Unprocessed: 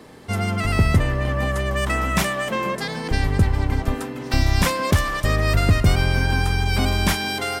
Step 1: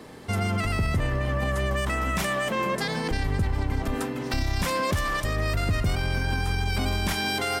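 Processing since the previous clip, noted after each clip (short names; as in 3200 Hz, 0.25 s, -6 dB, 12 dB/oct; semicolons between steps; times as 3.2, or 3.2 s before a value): limiter -17.5 dBFS, peak gain reduction 10 dB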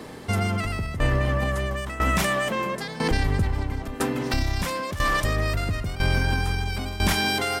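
tremolo saw down 1 Hz, depth 80%; gain +5.5 dB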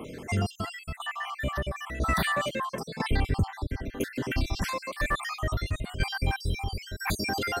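random spectral dropouts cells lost 61%; in parallel at -10 dB: soft clip -29 dBFS, distortion -7 dB; on the sum: gain -2.5 dB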